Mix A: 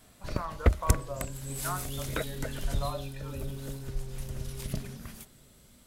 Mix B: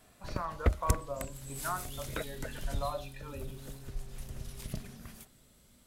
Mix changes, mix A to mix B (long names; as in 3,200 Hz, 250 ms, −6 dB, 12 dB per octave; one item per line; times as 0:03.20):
first sound −4.5 dB
second sound −9.5 dB